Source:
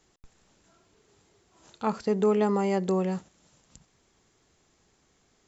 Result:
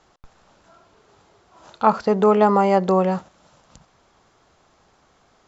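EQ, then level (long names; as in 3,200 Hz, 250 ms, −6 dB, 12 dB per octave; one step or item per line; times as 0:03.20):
high-frequency loss of the air 170 metres
flat-topped bell 890 Hz +8 dB
high-shelf EQ 4,000 Hz +10.5 dB
+6.0 dB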